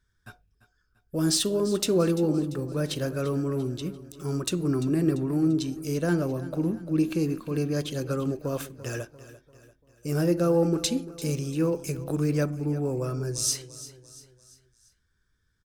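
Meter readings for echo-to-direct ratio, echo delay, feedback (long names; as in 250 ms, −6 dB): −15.0 dB, 343 ms, 47%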